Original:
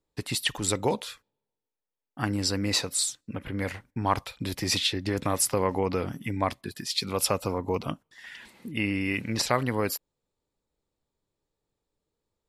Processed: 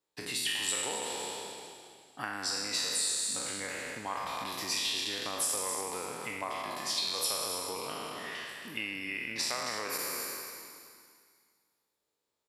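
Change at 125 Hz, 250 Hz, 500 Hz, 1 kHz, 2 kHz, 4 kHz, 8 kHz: -21.0, -14.5, -10.0, -5.5, -2.5, -2.0, -1.0 dB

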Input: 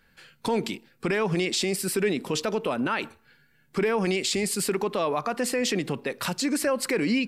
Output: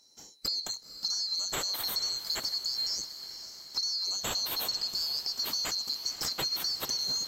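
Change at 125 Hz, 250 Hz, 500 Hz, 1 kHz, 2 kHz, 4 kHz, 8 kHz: -18.5, -24.5, -22.0, -12.5, -13.5, +5.0, -2.5 dB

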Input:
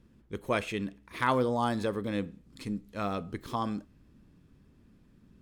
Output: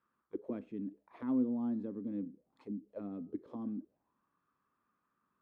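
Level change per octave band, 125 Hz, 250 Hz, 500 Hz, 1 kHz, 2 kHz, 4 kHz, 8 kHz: -13.5 dB, -2.0 dB, -13.0 dB, -22.5 dB, under -25 dB, under -30 dB, under -25 dB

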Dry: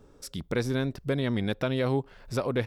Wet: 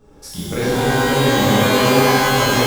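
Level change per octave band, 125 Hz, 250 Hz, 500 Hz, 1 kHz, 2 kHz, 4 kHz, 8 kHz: +10.0, +12.0, +13.0, +22.0, +18.5, +19.5, +23.0 dB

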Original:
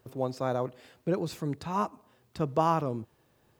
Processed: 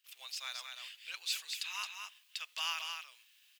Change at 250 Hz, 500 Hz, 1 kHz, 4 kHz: under -40 dB, -34.5 dB, -16.5 dB, +11.5 dB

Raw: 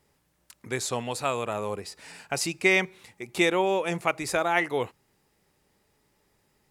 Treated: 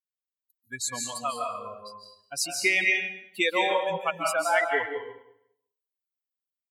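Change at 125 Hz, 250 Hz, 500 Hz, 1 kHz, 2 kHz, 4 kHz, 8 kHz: -12.0, -7.5, -2.0, +1.0, +2.0, +1.5, +2.5 dB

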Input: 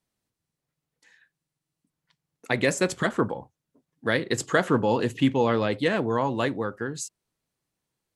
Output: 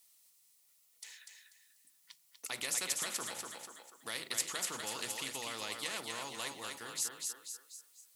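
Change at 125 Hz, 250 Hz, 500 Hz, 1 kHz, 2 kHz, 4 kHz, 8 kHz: -28.0, -26.5, -23.0, -16.0, -13.0, -3.0, +1.5 dB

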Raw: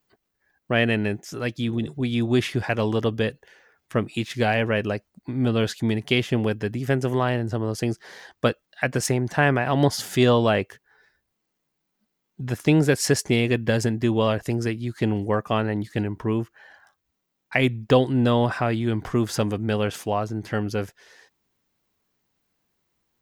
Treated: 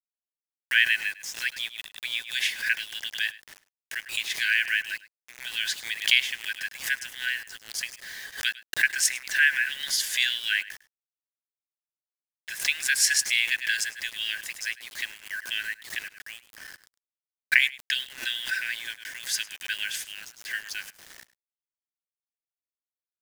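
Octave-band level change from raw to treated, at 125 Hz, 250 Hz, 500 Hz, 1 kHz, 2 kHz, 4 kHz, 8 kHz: under -35 dB, under -35 dB, under -35 dB, -21.5 dB, +5.0 dB, +5.5 dB, +5.5 dB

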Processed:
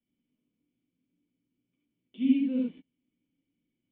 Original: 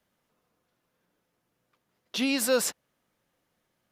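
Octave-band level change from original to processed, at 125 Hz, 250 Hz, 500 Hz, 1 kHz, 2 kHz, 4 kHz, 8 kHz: n/a, +5.0 dB, -15.5 dB, under -25 dB, -18.0 dB, under -15 dB, under -40 dB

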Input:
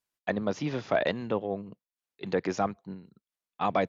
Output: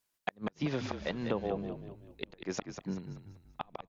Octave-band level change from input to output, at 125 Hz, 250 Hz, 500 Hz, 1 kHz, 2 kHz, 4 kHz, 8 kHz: -2.5 dB, -4.0 dB, -8.5 dB, -10.0 dB, -7.5 dB, -3.0 dB, n/a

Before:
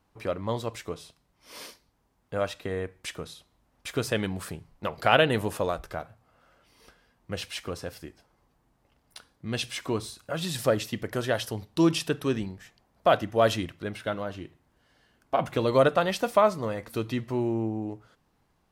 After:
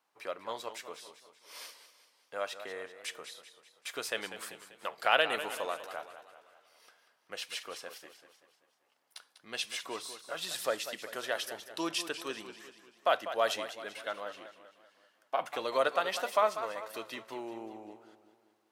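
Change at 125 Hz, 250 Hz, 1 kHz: -29.0, -16.5, -5.0 dB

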